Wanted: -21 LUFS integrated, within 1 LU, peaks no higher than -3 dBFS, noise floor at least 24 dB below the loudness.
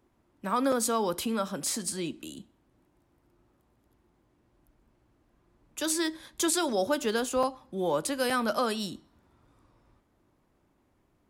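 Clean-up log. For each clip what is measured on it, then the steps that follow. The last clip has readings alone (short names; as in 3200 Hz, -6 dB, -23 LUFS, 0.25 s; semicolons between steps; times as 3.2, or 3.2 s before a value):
dropouts 3; longest dropout 4.2 ms; loudness -29.5 LUFS; peak -15.5 dBFS; loudness target -21.0 LUFS
-> interpolate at 0.72/7.43/8.3, 4.2 ms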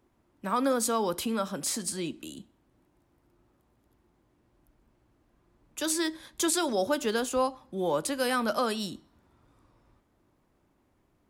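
dropouts 0; loudness -29.5 LUFS; peak -15.5 dBFS; loudness target -21.0 LUFS
-> gain +8.5 dB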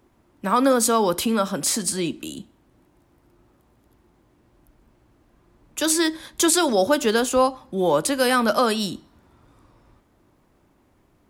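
loudness -21.0 LUFS; peak -7.0 dBFS; noise floor -62 dBFS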